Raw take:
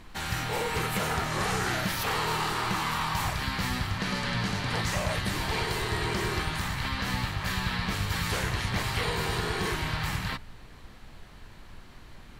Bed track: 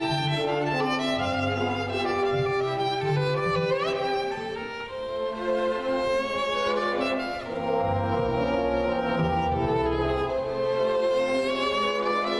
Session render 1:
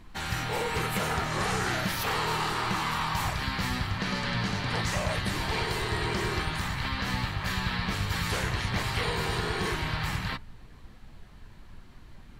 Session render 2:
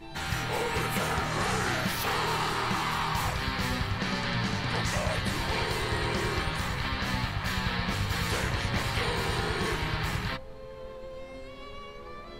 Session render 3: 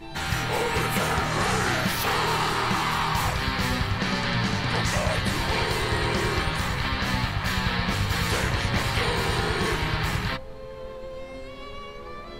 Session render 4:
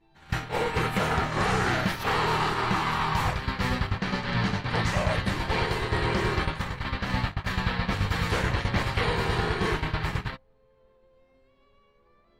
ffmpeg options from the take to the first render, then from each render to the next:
-af "afftdn=nr=6:nf=-48"
-filter_complex "[1:a]volume=-19dB[a];[0:a][a]amix=inputs=2:normalize=0"
-af "volume=4.5dB"
-af "agate=range=-24dB:threshold=-25dB:ratio=16:detection=peak,highshelf=f=4.9k:g=-11"

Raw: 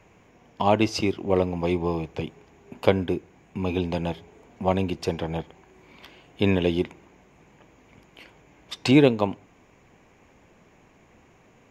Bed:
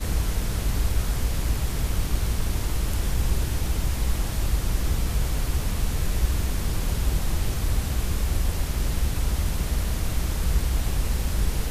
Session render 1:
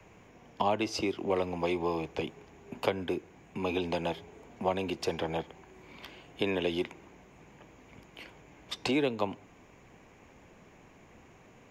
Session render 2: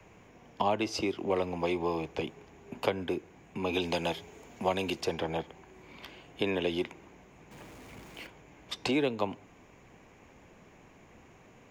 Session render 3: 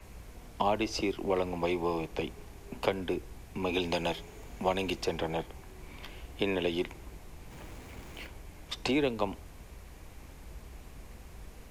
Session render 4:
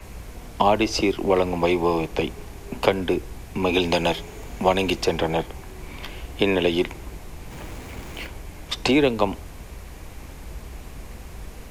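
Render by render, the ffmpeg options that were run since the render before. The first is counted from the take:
-filter_complex "[0:a]acrossover=split=280|910[a][b][c];[a]acompressor=threshold=-38dB:ratio=4[d];[b]acompressor=threshold=-29dB:ratio=4[e];[c]acompressor=threshold=-34dB:ratio=4[f];[d][e][f]amix=inputs=3:normalize=0,acrossover=split=220|3700[g][h][i];[g]alimiter=level_in=13dB:limit=-24dB:level=0:latency=1,volume=-13dB[j];[j][h][i]amix=inputs=3:normalize=0"
-filter_complex "[0:a]asettb=1/sr,asplit=3[a][b][c];[a]atrim=end=3.734[d];[b]atrim=start=3.73:end=5.01,asetpts=PTS-STARTPTS,afade=t=in:d=0.004:c=qsin,afade=t=out:st=1.276:d=0.004:c=qsin,highshelf=f=2.9k:g=9.5[e];[c]atrim=start=5.006[f];[d][e]acrossfade=d=0.004:c1=hsin:c2=qsin[g];[g][f]acrossfade=d=0.004:c1=qsin:c2=hsin,asettb=1/sr,asplit=3[h][i][j];[h]atrim=end=7.514[k];[i]atrim=start=7.51:end=8.27,asetpts=PTS-STARTPTS,afade=t=in:d=0.004:c=qsin,afade=t=out:st=0.756:d=0.004:c=qsin,aeval=exprs='val(0)+0.5*0.00355*sgn(val(0))':c=same[l];[j]atrim=start=8.266[m];[k][l]acrossfade=d=0.004:c1=hsin:c2=qsin[n];[n][m]acrossfade=d=0.004:c1=qsin:c2=hsin"
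-filter_complex "[1:a]volume=-24.5dB[a];[0:a][a]amix=inputs=2:normalize=0"
-af "volume=10dB"

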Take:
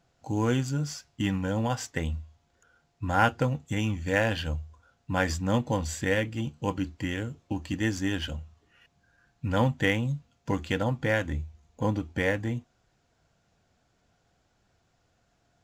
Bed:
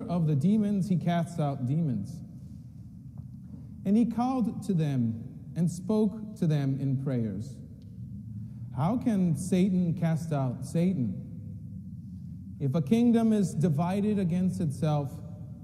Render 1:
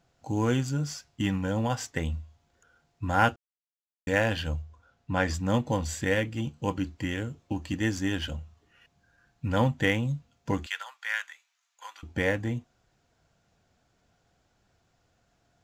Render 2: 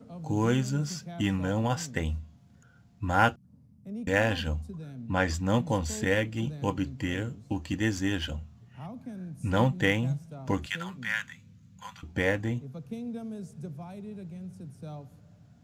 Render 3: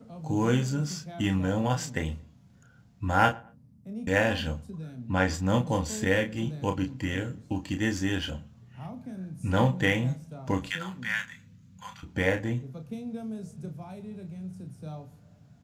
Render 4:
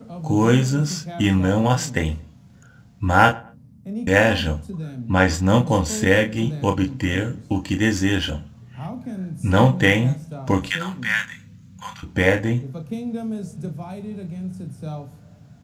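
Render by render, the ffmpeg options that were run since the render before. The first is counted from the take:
-filter_complex "[0:a]asettb=1/sr,asplit=3[a][b][c];[a]atrim=end=4.624[d];[b]atrim=start=4.62:end=5.34,asetpts=PTS-STARTPTS,afade=t=in:d=0.004:c=qsin,afade=t=out:st=0.716:d=0.004:c=qsin,highshelf=f=8.5k:g=-12[e];[c]atrim=start=5.336[f];[d][e]acrossfade=d=0.004:c1=hsin:c2=qsin[g];[g][f]acrossfade=d=0.004:c1=qsin:c2=hsin,asettb=1/sr,asplit=3[h][i][j];[h]atrim=end=10.664[k];[i]atrim=start=10.66:end=12.03,asetpts=PTS-STARTPTS,afade=t=in:d=0.004:c=qsin,afade=t=out:st=1.366:d=0.004:c=qsin,highpass=f=1.2k:w=0.5412,highpass=f=1.2k:w=1.3066[l];[j]atrim=start=12.026[m];[k][l]acrossfade=d=0.004:c1=hsin:c2=qsin[n];[n][m]acrossfade=d=0.004:c1=qsin:c2=hsin,asplit=3[o][p][q];[o]atrim=end=3.36,asetpts=PTS-STARTPTS,afade=t=out:st=3.356:d=0.004:c=hsin[r];[p]atrim=start=3.36:end=4.07,asetpts=PTS-STARTPTS,volume=0[s];[q]atrim=start=4.07,asetpts=PTS-STARTPTS,afade=t=in:d=0.004:c=hsin[t];[r][s][t]concat=n=3:v=0:a=1"
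-filter_complex "[1:a]volume=-14dB[a];[0:a][a]amix=inputs=2:normalize=0"
-filter_complex "[0:a]asplit=2[a][b];[b]adelay=32,volume=-7dB[c];[a][c]amix=inputs=2:normalize=0,asplit=2[d][e];[e]adelay=114,lowpass=f=1.7k:p=1,volume=-22dB,asplit=2[f][g];[g]adelay=114,lowpass=f=1.7k:p=1,volume=0.33[h];[d][f][h]amix=inputs=3:normalize=0"
-af "volume=8.5dB,alimiter=limit=-1dB:level=0:latency=1"

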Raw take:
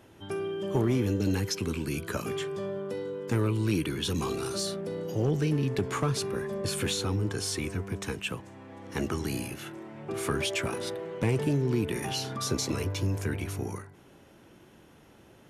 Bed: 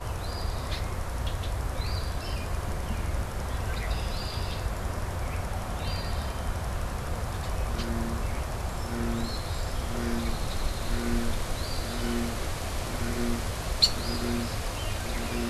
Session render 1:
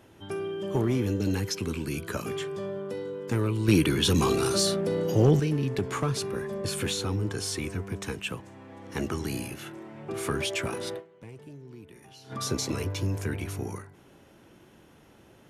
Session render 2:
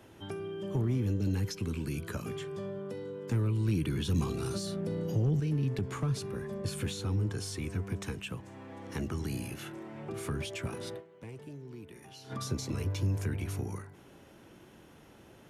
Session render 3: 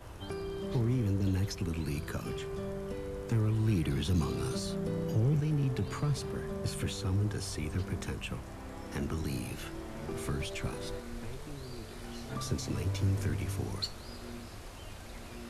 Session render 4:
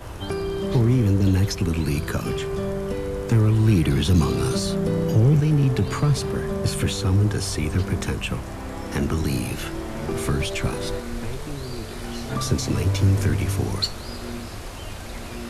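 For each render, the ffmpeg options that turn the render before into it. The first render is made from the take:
-filter_complex "[0:a]asettb=1/sr,asplit=3[a][b][c];[a]atrim=end=3.684[d];[b]atrim=start=3.68:end=5.4,asetpts=PTS-STARTPTS,afade=t=in:d=0.004:c=qsin,afade=t=out:st=1.716:d=0.004:c=qsin,acontrast=85[e];[c]atrim=start=5.396[f];[d][e]acrossfade=d=0.004:c1=hsin:c2=qsin[g];[g][f]acrossfade=d=0.004:c1=qsin:c2=hsin,asplit=3[h][i][j];[h]atrim=end=11.28,asetpts=PTS-STARTPTS,afade=t=out:st=10.98:d=0.3:c=exp:silence=0.112202[k];[i]atrim=start=11.28:end=12.03,asetpts=PTS-STARTPTS,volume=-19dB[l];[j]atrim=start=12.03,asetpts=PTS-STARTPTS,afade=t=in:d=0.3:c=exp:silence=0.112202[m];[k][l][m]concat=n=3:v=0:a=1"
-filter_complex "[0:a]alimiter=limit=-16.5dB:level=0:latency=1:release=222,acrossover=split=210[a][b];[b]acompressor=threshold=-41dB:ratio=3[c];[a][c]amix=inputs=2:normalize=0"
-filter_complex "[1:a]volume=-15dB[a];[0:a][a]amix=inputs=2:normalize=0"
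-af "volume=11.5dB"

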